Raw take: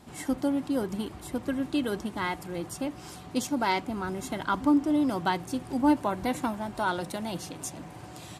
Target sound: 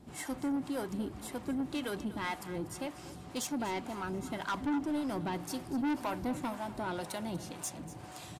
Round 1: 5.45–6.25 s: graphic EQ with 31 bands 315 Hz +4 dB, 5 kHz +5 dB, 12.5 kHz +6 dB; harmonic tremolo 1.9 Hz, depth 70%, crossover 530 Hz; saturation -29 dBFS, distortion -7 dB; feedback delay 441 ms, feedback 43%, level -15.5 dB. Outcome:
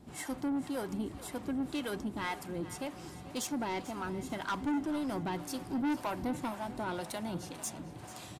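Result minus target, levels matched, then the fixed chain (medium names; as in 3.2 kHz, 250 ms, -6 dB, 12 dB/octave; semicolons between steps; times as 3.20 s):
echo 200 ms late
5.45–6.25 s: graphic EQ with 31 bands 315 Hz +4 dB, 5 kHz +5 dB, 12.5 kHz +6 dB; harmonic tremolo 1.9 Hz, depth 70%, crossover 530 Hz; saturation -29 dBFS, distortion -7 dB; feedback delay 241 ms, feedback 43%, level -15.5 dB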